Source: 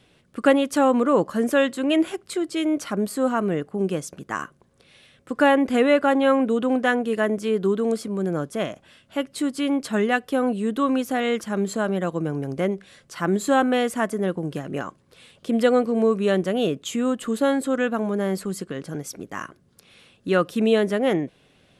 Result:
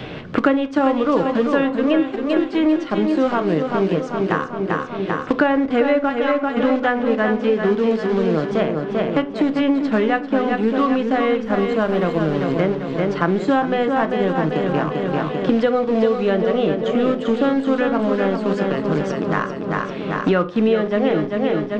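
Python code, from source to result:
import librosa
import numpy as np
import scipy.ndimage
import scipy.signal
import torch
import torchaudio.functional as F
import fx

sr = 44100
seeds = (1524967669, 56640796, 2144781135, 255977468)

p1 = fx.highpass(x, sr, hz=1200.0, slope=12, at=(6.09, 6.56), fade=0.02)
p2 = np.where(np.abs(p1) >= 10.0 ** (-24.5 / 20.0), p1, 0.0)
p3 = p1 + F.gain(torch.from_numpy(p2), -3.5).numpy()
p4 = scipy.ndimage.gaussian_filter1d(p3, 2.1, mode='constant')
p5 = fx.dmg_noise_colour(p4, sr, seeds[0], colour='brown', level_db=-43.0, at=(11.43, 12.17), fade=0.02)
p6 = fx.echo_feedback(p5, sr, ms=393, feedback_pct=50, wet_db=-7.0)
p7 = fx.room_shoebox(p6, sr, seeds[1], volume_m3=200.0, walls='furnished', distance_m=0.52)
p8 = fx.band_squash(p7, sr, depth_pct=100)
y = F.gain(torch.from_numpy(p8), -2.0).numpy()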